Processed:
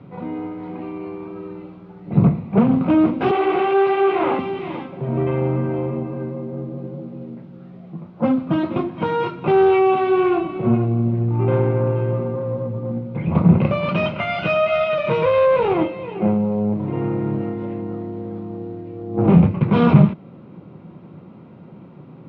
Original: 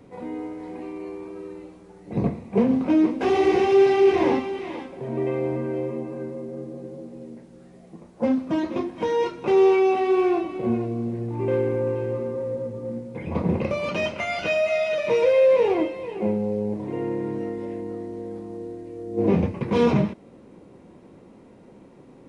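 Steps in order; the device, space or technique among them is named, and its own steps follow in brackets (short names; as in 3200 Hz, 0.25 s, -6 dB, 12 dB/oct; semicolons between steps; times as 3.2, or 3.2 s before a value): guitar amplifier (tube stage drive 15 dB, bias 0.55; tone controls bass +4 dB, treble -1 dB; speaker cabinet 100–3600 Hz, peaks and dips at 110 Hz +5 dB, 160 Hz +9 dB, 270 Hz -3 dB, 460 Hz -5 dB, 1300 Hz +6 dB, 1800 Hz -6 dB); 3.31–4.39 three-band isolator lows -17 dB, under 310 Hz, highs -16 dB, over 3900 Hz; gain +7 dB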